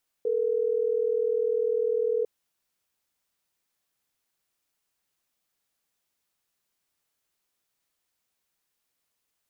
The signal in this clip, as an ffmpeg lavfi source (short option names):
-f lavfi -i "aevalsrc='0.0531*(sin(2*PI*440*t)+sin(2*PI*480*t))*clip(min(mod(t,6),2-mod(t,6))/0.005,0,1)':d=3.12:s=44100"